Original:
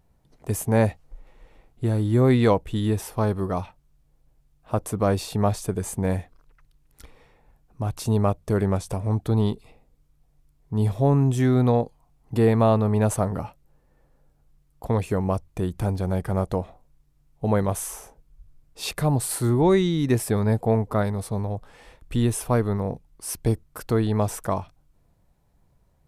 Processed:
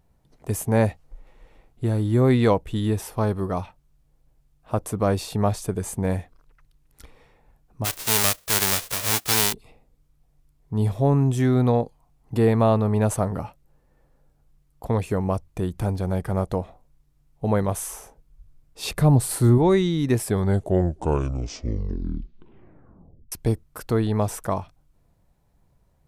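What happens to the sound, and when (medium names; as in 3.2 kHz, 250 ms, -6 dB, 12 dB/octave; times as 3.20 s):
7.84–9.52 s: formants flattened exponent 0.1
18.83–19.58 s: bass shelf 380 Hz +7 dB
20.21 s: tape stop 3.11 s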